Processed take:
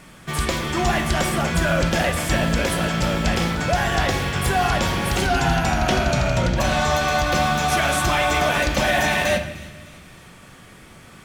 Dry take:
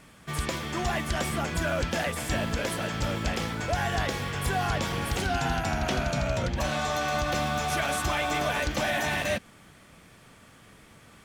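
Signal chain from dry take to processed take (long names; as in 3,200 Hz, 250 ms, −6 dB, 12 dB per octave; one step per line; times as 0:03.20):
delay with a high-pass on its return 303 ms, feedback 48%, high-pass 2,000 Hz, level −18 dB
on a send at −6 dB: convolution reverb RT60 1.0 s, pre-delay 5 ms
on the sum: level +7 dB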